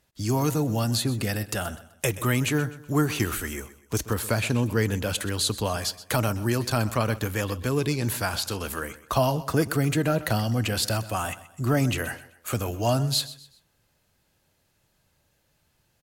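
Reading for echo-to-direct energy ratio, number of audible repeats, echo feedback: -16.0 dB, 3, 36%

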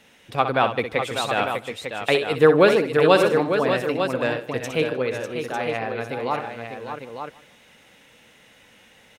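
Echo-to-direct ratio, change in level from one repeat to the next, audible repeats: -3.5 dB, no regular repeats, 8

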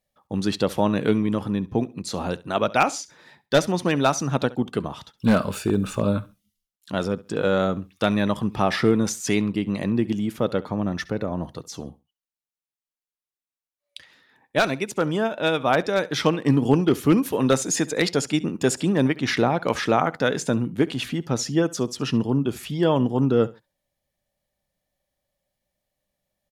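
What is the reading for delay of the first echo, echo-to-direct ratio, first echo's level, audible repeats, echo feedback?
68 ms, -20.0 dB, -20.0 dB, 2, 23%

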